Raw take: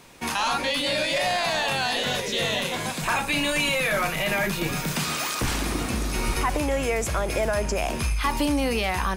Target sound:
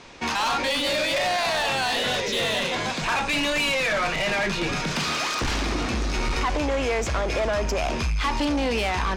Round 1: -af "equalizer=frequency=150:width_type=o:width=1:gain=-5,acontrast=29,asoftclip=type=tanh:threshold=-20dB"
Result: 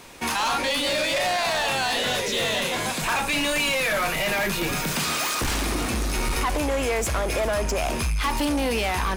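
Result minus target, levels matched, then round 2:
8,000 Hz band +4.5 dB
-af "lowpass=frequency=6200:width=0.5412,lowpass=frequency=6200:width=1.3066,equalizer=frequency=150:width_type=o:width=1:gain=-5,acontrast=29,asoftclip=type=tanh:threshold=-20dB"

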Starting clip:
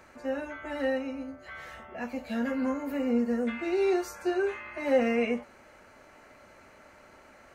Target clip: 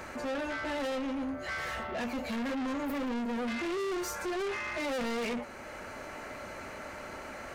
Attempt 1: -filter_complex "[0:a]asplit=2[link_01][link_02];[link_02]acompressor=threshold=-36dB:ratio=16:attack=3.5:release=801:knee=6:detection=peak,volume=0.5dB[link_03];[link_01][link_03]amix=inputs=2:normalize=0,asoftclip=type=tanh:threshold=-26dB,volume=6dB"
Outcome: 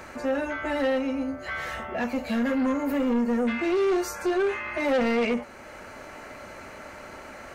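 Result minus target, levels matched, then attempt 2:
soft clipping: distortion −8 dB
-filter_complex "[0:a]asplit=2[link_01][link_02];[link_02]acompressor=threshold=-36dB:ratio=16:attack=3.5:release=801:knee=6:detection=peak,volume=0.5dB[link_03];[link_01][link_03]amix=inputs=2:normalize=0,asoftclip=type=tanh:threshold=-38dB,volume=6dB"

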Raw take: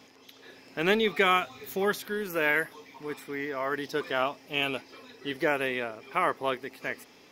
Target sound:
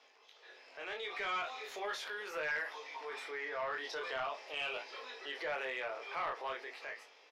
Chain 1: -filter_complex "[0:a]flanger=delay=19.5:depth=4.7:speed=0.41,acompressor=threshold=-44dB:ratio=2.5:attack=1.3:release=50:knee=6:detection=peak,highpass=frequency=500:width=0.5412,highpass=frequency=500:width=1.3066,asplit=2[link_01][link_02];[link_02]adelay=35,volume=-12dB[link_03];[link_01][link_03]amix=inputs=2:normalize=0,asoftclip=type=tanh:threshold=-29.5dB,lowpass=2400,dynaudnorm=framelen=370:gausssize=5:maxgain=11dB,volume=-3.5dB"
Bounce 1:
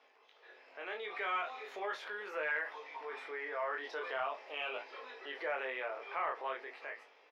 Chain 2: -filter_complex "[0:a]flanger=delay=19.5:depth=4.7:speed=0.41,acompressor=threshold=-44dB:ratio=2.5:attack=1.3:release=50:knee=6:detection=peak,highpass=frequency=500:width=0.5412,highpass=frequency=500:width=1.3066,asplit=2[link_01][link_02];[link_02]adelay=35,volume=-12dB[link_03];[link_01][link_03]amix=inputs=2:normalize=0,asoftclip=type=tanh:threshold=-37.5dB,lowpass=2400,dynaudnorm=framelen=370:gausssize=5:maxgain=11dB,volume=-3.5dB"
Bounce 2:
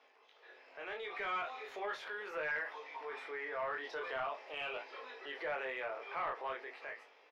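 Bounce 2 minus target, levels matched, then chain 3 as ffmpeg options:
4,000 Hz band −4.5 dB
-filter_complex "[0:a]flanger=delay=19.5:depth=4.7:speed=0.41,acompressor=threshold=-44dB:ratio=2.5:attack=1.3:release=50:knee=6:detection=peak,highpass=frequency=500:width=0.5412,highpass=frequency=500:width=1.3066,asplit=2[link_01][link_02];[link_02]adelay=35,volume=-12dB[link_03];[link_01][link_03]amix=inputs=2:normalize=0,asoftclip=type=tanh:threshold=-37.5dB,lowpass=4900,dynaudnorm=framelen=370:gausssize=5:maxgain=11dB,volume=-3.5dB"

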